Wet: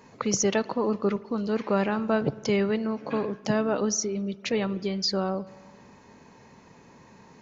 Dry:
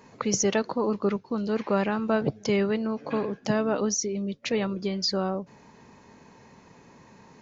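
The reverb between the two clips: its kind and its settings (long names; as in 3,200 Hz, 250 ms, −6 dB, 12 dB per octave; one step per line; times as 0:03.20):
spring reverb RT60 1.6 s, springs 51 ms, chirp 45 ms, DRR 18.5 dB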